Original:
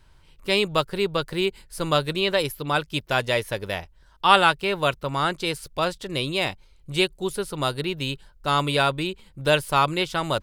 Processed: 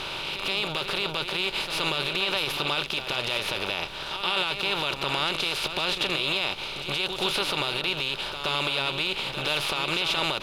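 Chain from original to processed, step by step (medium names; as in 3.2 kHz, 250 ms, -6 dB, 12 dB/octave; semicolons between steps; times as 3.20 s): spectral levelling over time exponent 0.4; high-order bell 3.8 kHz +10 dB; peak limiter -7.5 dBFS, peak gain reduction 13 dB; reverse echo 124 ms -8 dB; trim -8 dB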